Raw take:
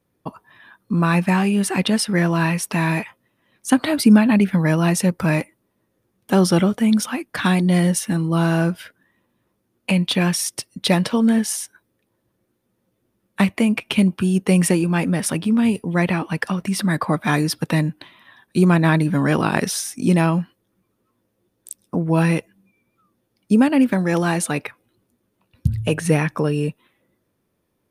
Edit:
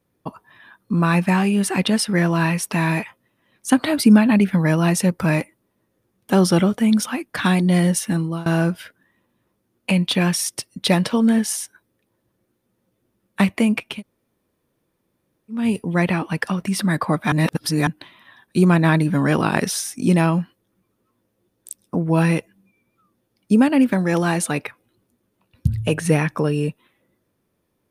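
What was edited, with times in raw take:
8.19–8.46 s: fade out, to -22.5 dB
13.91–15.60 s: room tone, crossfade 0.24 s
17.32–17.87 s: reverse

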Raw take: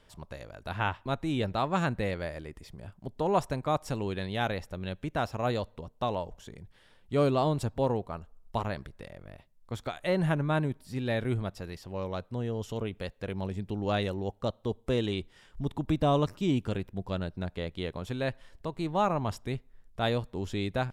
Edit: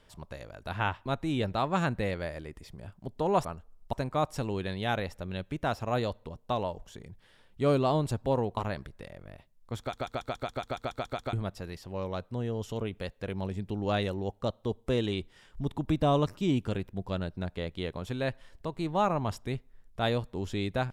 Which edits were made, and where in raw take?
8.09–8.57 s: move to 3.45 s
9.79 s: stutter in place 0.14 s, 11 plays

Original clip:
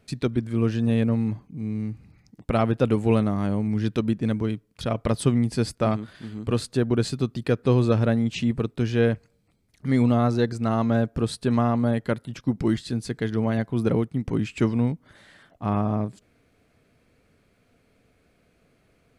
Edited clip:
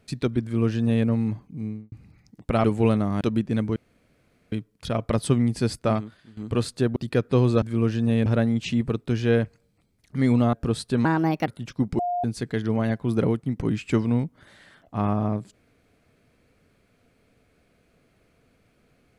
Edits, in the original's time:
0.42–1.06 s: copy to 7.96 s
1.59–1.92 s: studio fade out
2.64–2.90 s: delete
3.47–3.93 s: delete
4.48 s: insert room tone 0.76 s
5.89–6.33 s: fade out quadratic, to -13.5 dB
6.92–7.30 s: delete
10.23–11.06 s: delete
11.58–12.15 s: speed 136%
12.67–12.92 s: bleep 709 Hz -23 dBFS

